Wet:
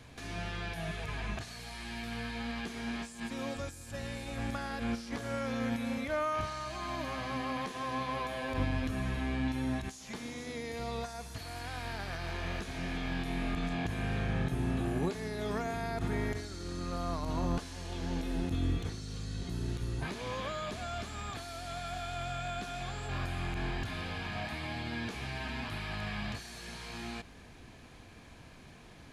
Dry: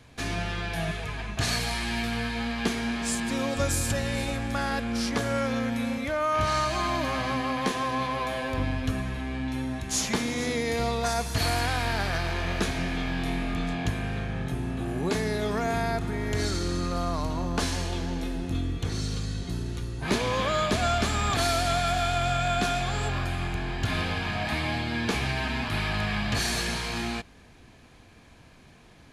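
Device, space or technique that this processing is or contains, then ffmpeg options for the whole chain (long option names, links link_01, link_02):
de-esser from a sidechain: -filter_complex "[0:a]asplit=2[link_01][link_02];[link_02]highpass=5900,apad=whole_len=1284551[link_03];[link_01][link_03]sidechaincompress=threshold=-55dB:ratio=5:attack=3.4:release=41"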